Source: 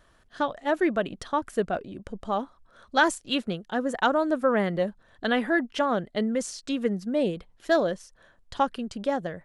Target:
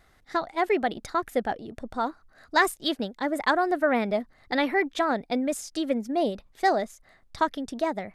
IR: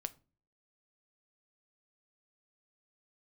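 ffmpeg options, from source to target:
-af "asetrate=51156,aresample=44100"

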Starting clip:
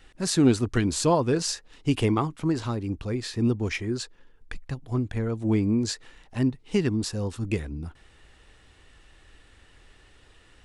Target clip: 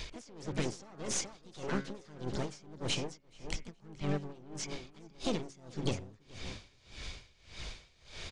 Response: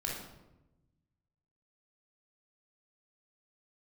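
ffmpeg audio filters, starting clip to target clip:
-filter_complex "[0:a]equalizer=frequency=3700:width_type=o:width=2:gain=5.5,bandreject=frequency=107:width_type=h:width=4,bandreject=frequency=214:width_type=h:width=4,bandreject=frequency=321:width_type=h:width=4,bandreject=frequency=428:width_type=h:width=4,bandreject=frequency=535:width_type=h:width=4,bandreject=frequency=642:width_type=h:width=4,bandreject=frequency=749:width_type=h:width=4,bandreject=frequency=856:width_type=h:width=4,bandreject=frequency=963:width_type=h:width=4,bandreject=frequency=1070:width_type=h:width=4,bandreject=frequency=1177:width_type=h:width=4,bandreject=frequency=1284:width_type=h:width=4,bandreject=frequency=1391:width_type=h:width=4,bandreject=frequency=1498:width_type=h:width=4,bandreject=frequency=1605:width_type=h:width=4,bandreject=frequency=1712:width_type=h:width=4,bandreject=frequency=1819:width_type=h:width=4,bandreject=frequency=1926:width_type=h:width=4,bandreject=frequency=2033:width_type=h:width=4,bandreject=frequency=2140:width_type=h:width=4,alimiter=limit=-18dB:level=0:latency=1:release=24,acompressor=threshold=-50dB:ratio=2,asetrate=56448,aresample=44100,aresample=16000,aeval=exprs='clip(val(0),-1,0.00376)':channel_layout=same,aresample=44100,asplit=2[link_01][link_02];[link_02]asetrate=58866,aresample=44100,atempo=0.749154,volume=-7dB[link_03];[link_01][link_03]amix=inputs=2:normalize=0,aecho=1:1:425|850|1275|1700:0.251|0.0904|0.0326|0.0117,aeval=exprs='val(0)*pow(10,-24*(0.5-0.5*cos(2*PI*1.7*n/s))/20)':channel_layout=same,volume=11dB"

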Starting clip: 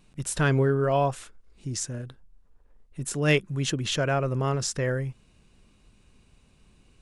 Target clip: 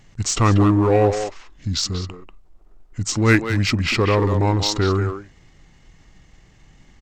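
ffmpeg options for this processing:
ffmpeg -i in.wav -filter_complex "[0:a]asetrate=33038,aresample=44100,atempo=1.33484,asplit=2[link_01][link_02];[link_02]aeval=exprs='0.0531*(abs(mod(val(0)/0.0531+3,4)-2)-1)':channel_layout=same,volume=-12dB[link_03];[link_01][link_03]amix=inputs=2:normalize=0,asplit=2[link_04][link_05];[link_05]adelay=190,highpass=300,lowpass=3400,asoftclip=type=hard:threshold=-19.5dB,volume=-6dB[link_06];[link_04][link_06]amix=inputs=2:normalize=0,volume=7dB" out.wav

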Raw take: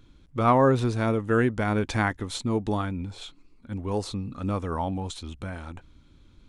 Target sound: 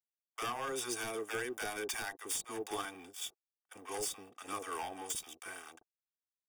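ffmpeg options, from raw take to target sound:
ffmpeg -i in.wav -filter_complex "[0:a]aemphasis=mode=production:type=75fm,aeval=exprs='sgn(val(0))*max(abs(val(0))-0.00891,0)':channel_layout=same,highpass=510,highshelf=frequency=8200:gain=7.5,aecho=1:1:2.6:0.51,acompressor=threshold=-26dB:ratio=16,agate=range=-23dB:threshold=-48dB:ratio=16:detection=peak,aeval=exprs='0.0531*(abs(mod(val(0)/0.0531+3,4)-2)-1)':channel_layout=same,asuperstop=centerf=4100:order=20:qfactor=7.1,acrossover=split=680[link_01][link_02];[link_01]adelay=40[link_03];[link_03][link_02]amix=inputs=2:normalize=0,volume=-4dB" out.wav

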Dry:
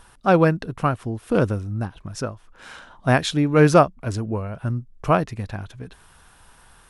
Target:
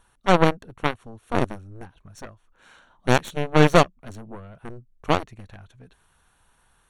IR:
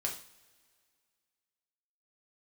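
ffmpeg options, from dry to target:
-af "aeval=exprs='0.794*(cos(1*acos(clip(val(0)/0.794,-1,1)))-cos(1*PI/2))+0.2*(cos(4*acos(clip(val(0)/0.794,-1,1)))-cos(4*PI/2))+0.0282*(cos(5*acos(clip(val(0)/0.794,-1,1)))-cos(5*PI/2))+0.178*(cos(7*acos(clip(val(0)/0.794,-1,1)))-cos(7*PI/2))':channel_layout=same,asuperstop=centerf=5000:order=8:qfactor=7,volume=-3dB"

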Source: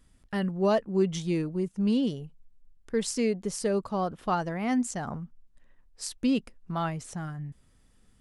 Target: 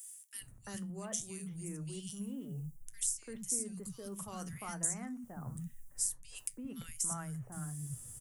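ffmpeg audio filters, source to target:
ffmpeg -i in.wav -filter_complex "[0:a]equalizer=frequency=120:width=2.7:gain=13.5,areverse,acompressor=threshold=-38dB:ratio=6,areverse,aexciter=amount=10:drive=7.9:freq=6400,acrossover=split=240|1200[link_01][link_02][link_03];[link_01]acompressor=threshold=-44dB:ratio=4[link_04];[link_02]acompressor=threshold=-55dB:ratio=4[link_05];[link_03]acompressor=threshold=-38dB:ratio=4[link_06];[link_04][link_05][link_06]amix=inputs=3:normalize=0,flanger=delay=8.2:depth=4.5:regen=-74:speed=0.64:shape=sinusoidal,acrossover=split=230|2000[link_07][link_08][link_09];[link_08]adelay=340[link_10];[link_07]adelay=410[link_11];[link_11][link_10][link_09]amix=inputs=3:normalize=0,volume=8dB" out.wav

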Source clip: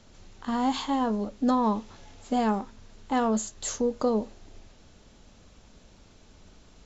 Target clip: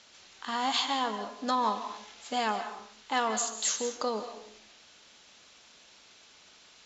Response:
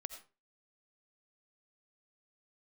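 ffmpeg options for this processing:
-filter_complex "[0:a]bandpass=frequency=3400:width_type=q:width=0.65:csg=0,asplit=2[link_01][link_02];[1:a]atrim=start_sample=2205,asetrate=23814,aresample=44100[link_03];[link_02][link_03]afir=irnorm=-1:irlink=0,volume=7.5dB[link_04];[link_01][link_04]amix=inputs=2:normalize=0,volume=-3dB"

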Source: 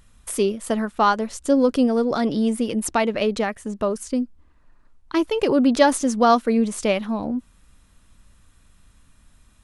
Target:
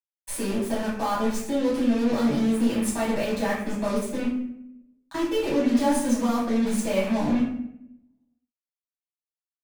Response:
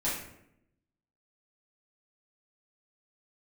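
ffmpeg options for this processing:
-filter_complex "[0:a]asplit=2[link_01][link_02];[link_02]aeval=exprs='sgn(val(0))*max(abs(val(0))-0.0299,0)':channel_layout=same,volume=-4dB[link_03];[link_01][link_03]amix=inputs=2:normalize=0,alimiter=limit=-9.5dB:level=0:latency=1,areverse,acompressor=threshold=-27dB:ratio=10,areverse,acrusher=bits=5:mix=0:aa=0.5,acrossover=split=180[link_04][link_05];[link_05]acompressor=threshold=-35dB:ratio=1.5[link_06];[link_04][link_06]amix=inputs=2:normalize=0[link_07];[1:a]atrim=start_sample=2205[link_08];[link_07][link_08]afir=irnorm=-1:irlink=0"

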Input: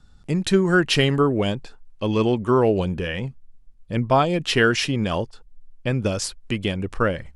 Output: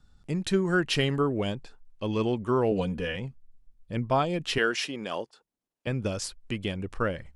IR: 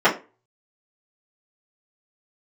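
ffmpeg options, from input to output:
-filter_complex "[0:a]asettb=1/sr,asplit=3[link_01][link_02][link_03];[link_01]atrim=end=2.714[link_04];[link_02]atrim=start=2.71:end=3.16,asetpts=PTS-STARTPTS,afade=type=in:duration=0.004:curve=qsin,afade=type=out:start_time=0.446:duration=0.004:curve=qsin,aecho=1:1:4.1:0.88,atrim=end_sample=19845[link_05];[link_03]atrim=start=3.156[link_06];[link_04][link_05]acrossfade=duration=0.004:curve1=hsin:curve2=qsin[link_07];[link_07][link_06]acrossfade=duration=0.004:curve1=qsin:curve2=hsin,asettb=1/sr,asplit=3[link_08][link_09][link_10];[link_08]atrim=end=4.584[link_11];[link_09]atrim=start=4.58:end=5.87,asetpts=PTS-STARTPTS,afade=type=in:duration=0.004:curve=qsin,afade=type=out:start_time=1.286:duration=0.004:curve=qsin,highpass=310[link_12];[link_10]atrim=start=5.866[link_13];[link_11][link_12]acrossfade=duration=0.004:curve1=hsin:curve2=qsin[link_14];[link_14][link_13]acrossfade=duration=0.004:curve1=qsin:curve2=hsin,volume=-7dB"

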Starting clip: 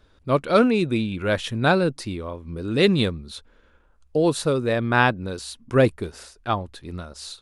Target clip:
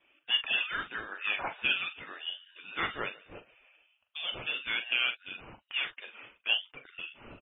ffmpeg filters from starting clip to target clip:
ffmpeg -i in.wav -filter_complex "[0:a]alimiter=limit=-12.5dB:level=0:latency=1:release=163,asoftclip=type=tanh:threshold=-14.5dB,highpass=frequency=880:width=0.5412,highpass=frequency=880:width=1.3066,aphaser=in_gain=1:out_gain=1:delay=3.9:decay=0.3:speed=1.6:type=triangular,adynamicequalizer=threshold=0.00398:dfrequency=1200:dqfactor=5.4:tfrequency=1200:tqfactor=5.4:attack=5:release=100:ratio=0.375:range=2:mode=boostabove:tftype=bell,asplit=2[link_01][link_02];[link_02]adelay=42,volume=-9.5dB[link_03];[link_01][link_03]amix=inputs=2:normalize=0,asplit=3[link_04][link_05][link_06];[link_04]afade=type=out:start_time=1.15:duration=0.02[link_07];[link_05]asplit=4[link_08][link_09][link_10][link_11];[link_09]adelay=146,afreqshift=-41,volume=-22.5dB[link_12];[link_10]adelay=292,afreqshift=-82,volume=-29.1dB[link_13];[link_11]adelay=438,afreqshift=-123,volume=-35.6dB[link_14];[link_08][link_12][link_13][link_14]amix=inputs=4:normalize=0,afade=type=in:start_time=1.15:duration=0.02,afade=type=out:start_time=4.39:duration=0.02[link_15];[link_06]afade=type=in:start_time=4.39:duration=0.02[link_16];[link_07][link_15][link_16]amix=inputs=3:normalize=0,lowpass=frequency=3400:width_type=q:width=0.5098,lowpass=frequency=3400:width_type=q:width=0.6013,lowpass=frequency=3400:width_type=q:width=0.9,lowpass=frequency=3400:width_type=q:width=2.563,afreqshift=-4000" -ar 24000 -c:a libmp3lame -b:a 16k out.mp3

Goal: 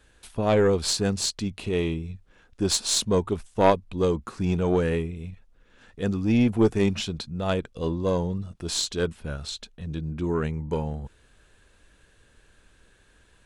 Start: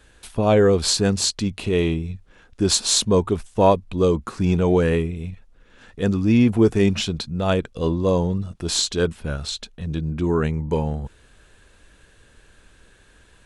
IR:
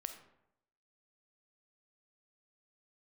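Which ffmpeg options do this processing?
-af "aeval=exprs='0.708*(cos(1*acos(clip(val(0)/0.708,-1,1)))-cos(1*PI/2))+0.0794*(cos(2*acos(clip(val(0)/0.708,-1,1)))-cos(2*PI/2))+0.1*(cos(3*acos(clip(val(0)/0.708,-1,1)))-cos(3*PI/2))':channel_layout=same,volume=-1dB"

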